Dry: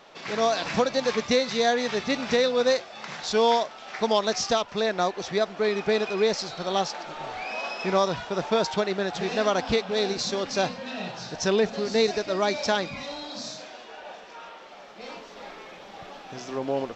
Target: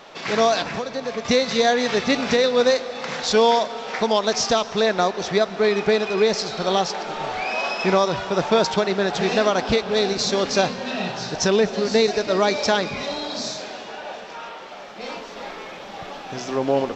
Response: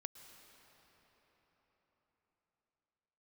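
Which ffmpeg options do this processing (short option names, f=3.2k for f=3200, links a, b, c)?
-filter_complex "[0:a]asettb=1/sr,asplit=3[a][b][c];[a]atrim=end=0.624[d];[b]atrim=start=0.62:end=1.25,asetpts=PTS-STARTPTS,afade=t=in:d=0.004:c=qsin,afade=t=out:st=0.626:d=0.004:c=qsin,acrossover=split=360|2300[e][f][g];[e]acompressor=threshold=-41dB:ratio=4[h];[f]acompressor=threshold=-37dB:ratio=4[i];[g]acompressor=threshold=-49dB:ratio=4[j];[h][i][j]amix=inputs=3:normalize=0[k];[c]atrim=start=1.246[l];[d][k]acrossfade=d=0.004:c1=hsin:c2=qsin[m];[m][l]acrossfade=d=0.004:c1=qsin:c2=hsin,alimiter=limit=-15dB:level=0:latency=1:release=431,asplit=2[n][o];[1:a]atrim=start_sample=2205[p];[o][p]afir=irnorm=-1:irlink=0,volume=3.5dB[q];[n][q]amix=inputs=2:normalize=0,volume=2dB"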